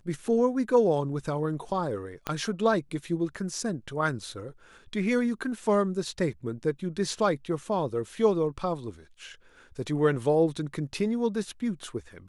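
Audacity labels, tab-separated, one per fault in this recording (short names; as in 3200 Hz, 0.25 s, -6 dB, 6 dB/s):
2.270000	2.270000	pop -15 dBFS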